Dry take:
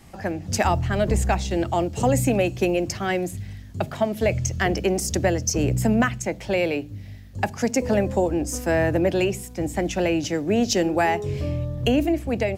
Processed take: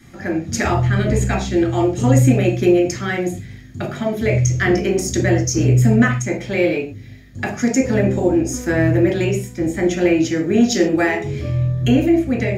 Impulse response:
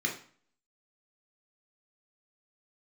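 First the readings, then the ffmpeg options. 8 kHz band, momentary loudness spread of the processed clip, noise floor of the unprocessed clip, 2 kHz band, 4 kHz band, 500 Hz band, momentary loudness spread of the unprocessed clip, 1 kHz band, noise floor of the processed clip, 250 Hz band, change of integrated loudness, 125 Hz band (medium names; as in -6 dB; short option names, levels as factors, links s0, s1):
+3.0 dB, 9 LU, -40 dBFS, +5.5 dB, +1.5 dB, +3.5 dB, 9 LU, -0.5 dB, -37 dBFS, +7.5 dB, +6.0 dB, +9.0 dB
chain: -filter_complex "[1:a]atrim=start_sample=2205,atrim=end_sample=6615[s0];[0:a][s0]afir=irnorm=-1:irlink=0,volume=0.75"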